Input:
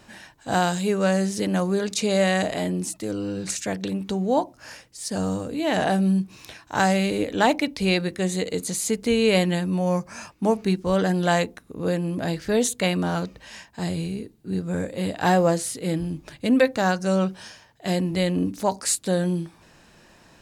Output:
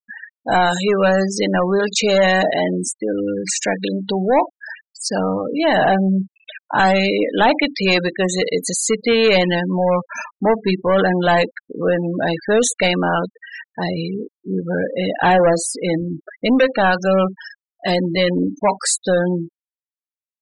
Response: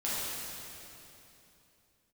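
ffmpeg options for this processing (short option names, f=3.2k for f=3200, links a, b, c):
-filter_complex "[0:a]asplit=2[a][b];[b]highpass=f=720:p=1,volume=21dB,asoftclip=type=tanh:threshold=-5dB[c];[a][c]amix=inputs=2:normalize=0,lowpass=f=5.2k:p=1,volume=-6dB,afftfilt=real='re*gte(hypot(re,im),0.112)':imag='im*gte(hypot(re,im),0.112)':win_size=1024:overlap=0.75"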